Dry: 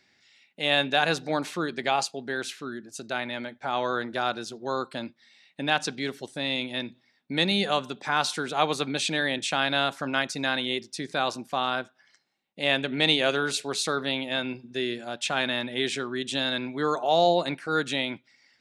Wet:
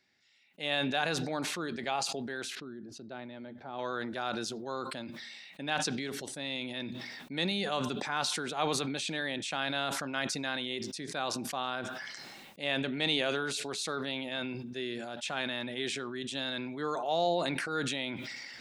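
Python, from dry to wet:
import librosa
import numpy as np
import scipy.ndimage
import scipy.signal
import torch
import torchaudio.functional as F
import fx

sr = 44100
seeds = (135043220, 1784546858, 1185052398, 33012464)

y = fx.curve_eq(x, sr, hz=(340.0, 2300.0, 4600.0, 7700.0), db=(0, -12, -10, -25), at=(2.55, 3.79))
y = fx.sustainer(y, sr, db_per_s=23.0)
y = F.gain(torch.from_numpy(y), -8.5).numpy()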